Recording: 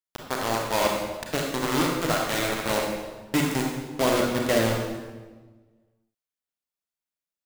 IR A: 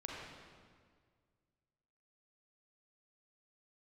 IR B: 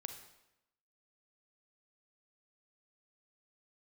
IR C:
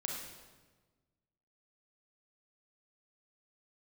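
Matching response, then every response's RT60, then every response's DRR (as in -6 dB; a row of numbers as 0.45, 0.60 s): C; 1.8, 0.90, 1.3 s; -3.5, 6.0, -1.0 dB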